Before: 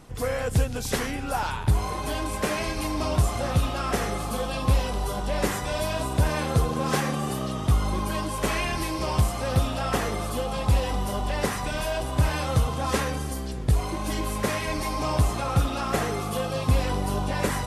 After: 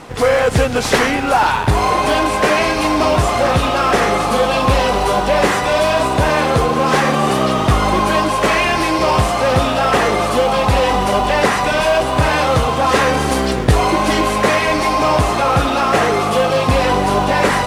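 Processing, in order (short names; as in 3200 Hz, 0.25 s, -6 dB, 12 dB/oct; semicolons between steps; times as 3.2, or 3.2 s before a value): CVSD 64 kbps; in parallel at -9 dB: sample-and-hold 25×; on the sum: overdrive pedal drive 21 dB, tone 2200 Hz, clips at -4.5 dBFS; vocal rider 0.5 s; gain +4 dB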